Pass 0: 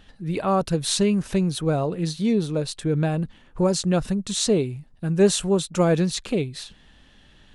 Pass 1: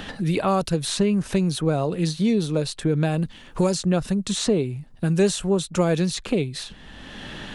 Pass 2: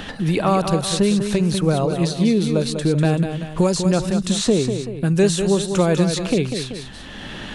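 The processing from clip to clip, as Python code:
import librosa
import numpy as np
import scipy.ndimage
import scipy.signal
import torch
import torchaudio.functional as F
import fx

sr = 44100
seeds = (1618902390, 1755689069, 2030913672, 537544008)

y1 = fx.band_squash(x, sr, depth_pct=70)
y2 = fx.echo_multitap(y1, sr, ms=(196, 383), db=(-7.5, -13.5))
y2 = y2 * 10.0 ** (3.0 / 20.0)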